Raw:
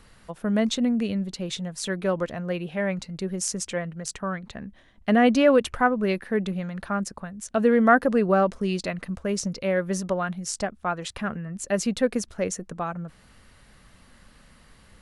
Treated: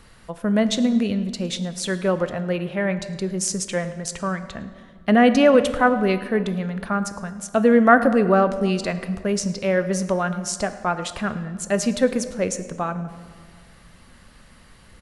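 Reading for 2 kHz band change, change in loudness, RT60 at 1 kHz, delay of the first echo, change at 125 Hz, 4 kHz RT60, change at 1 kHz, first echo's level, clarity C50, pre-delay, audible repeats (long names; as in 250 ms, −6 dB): +4.0 dB, +4.0 dB, 1.7 s, 109 ms, +4.0 dB, 1.1 s, +4.0 dB, −21.5 dB, 12.0 dB, 3 ms, 1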